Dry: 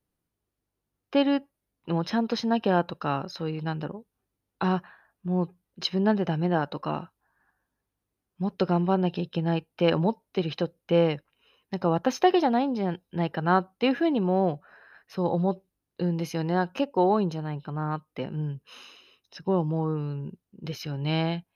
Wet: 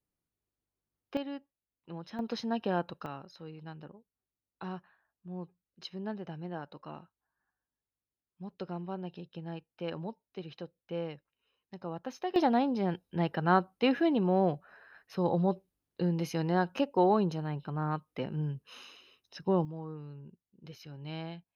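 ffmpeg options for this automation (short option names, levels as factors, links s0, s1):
-af "asetnsamples=n=441:p=0,asendcmd='1.17 volume volume -16dB;2.19 volume volume -8dB;3.06 volume volume -15dB;12.36 volume volume -3dB;19.65 volume volume -14dB',volume=0.398"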